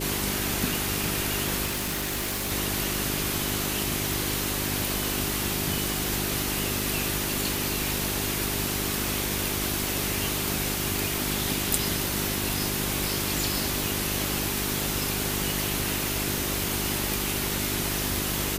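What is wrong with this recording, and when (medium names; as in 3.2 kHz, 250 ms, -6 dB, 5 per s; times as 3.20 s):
hum 50 Hz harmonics 8 -33 dBFS
1.65–2.52 s: clipped -25.5 dBFS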